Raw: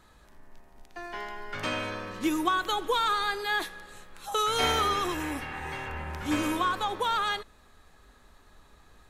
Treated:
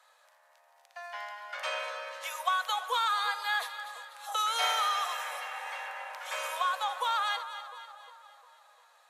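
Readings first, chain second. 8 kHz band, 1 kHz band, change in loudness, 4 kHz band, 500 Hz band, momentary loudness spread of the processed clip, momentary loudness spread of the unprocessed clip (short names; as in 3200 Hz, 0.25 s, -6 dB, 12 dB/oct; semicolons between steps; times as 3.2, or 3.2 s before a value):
-1.5 dB, -1.5 dB, -3.0 dB, -1.5 dB, -8.5 dB, 15 LU, 13 LU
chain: steep high-pass 510 Hz 96 dB/oct; split-band echo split 1100 Hz, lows 0.353 s, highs 0.246 s, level -11.5 dB; downsampling 32000 Hz; gain -2 dB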